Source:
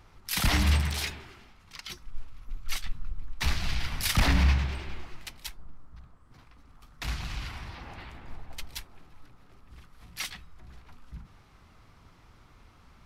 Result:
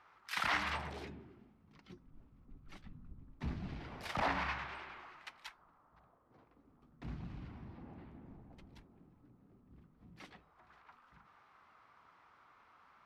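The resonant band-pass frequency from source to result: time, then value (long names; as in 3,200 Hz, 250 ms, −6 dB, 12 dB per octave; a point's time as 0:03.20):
resonant band-pass, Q 1.3
0:00.69 1,300 Hz
0:01.12 230 Hz
0:03.60 230 Hz
0:04.46 1,200 Hz
0:05.58 1,200 Hz
0:07.04 230 Hz
0:10.15 230 Hz
0:10.66 1,200 Hz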